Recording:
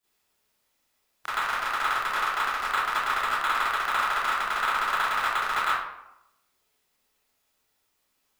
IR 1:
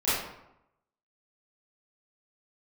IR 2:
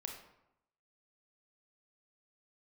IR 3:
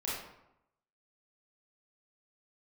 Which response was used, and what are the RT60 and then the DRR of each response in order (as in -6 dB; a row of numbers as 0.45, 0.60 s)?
1; 0.85, 0.85, 0.85 s; -14.0, 2.0, -7.5 dB